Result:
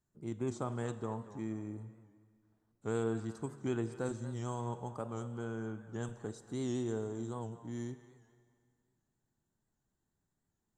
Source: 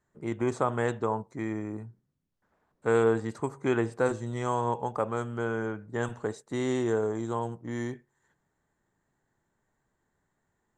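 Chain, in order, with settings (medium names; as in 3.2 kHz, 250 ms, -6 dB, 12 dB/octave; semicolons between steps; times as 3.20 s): ten-band graphic EQ 500 Hz -7 dB, 1 kHz -6 dB, 2 kHz -11 dB; on a send: band-passed feedback delay 234 ms, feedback 41%, band-pass 1.4 kHz, level -13 dB; on the sum: Schroeder reverb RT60 2.1 s, combs from 32 ms, DRR 14 dB; warped record 78 rpm, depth 100 cents; trim -4.5 dB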